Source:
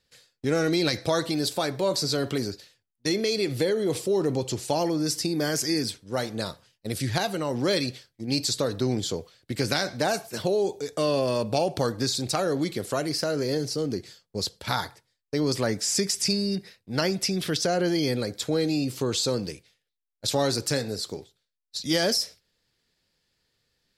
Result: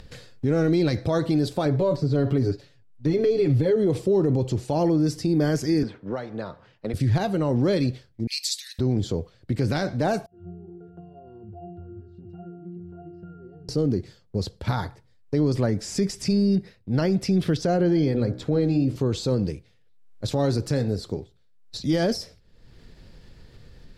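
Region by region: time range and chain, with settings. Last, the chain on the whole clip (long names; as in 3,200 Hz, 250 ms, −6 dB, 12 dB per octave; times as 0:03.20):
0:01.65–0:03.76: de-essing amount 85% + high-shelf EQ 9,400 Hz −7 dB + comb filter 7.1 ms, depth 77%
0:05.83–0:06.94: low-pass filter 1,400 Hz + spectral tilt +4.5 dB per octave + multiband upward and downward compressor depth 100%
0:08.27–0:08.79: Butterworth high-pass 1,800 Hz 72 dB per octave + spectral tilt +3.5 dB per octave
0:10.26–0:13.69: high-shelf EQ 3,700 Hz −11 dB + downward compressor, threshold −36 dBFS + resonances in every octave F, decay 0.78 s
0:17.83–0:18.96: high-shelf EQ 6,800 Hz −11 dB + hum removal 62.35 Hz, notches 28 + upward compression, threshold −36 dBFS
whole clip: spectral tilt −3.5 dB per octave; brickwall limiter −14 dBFS; upward compression, threshold −29 dBFS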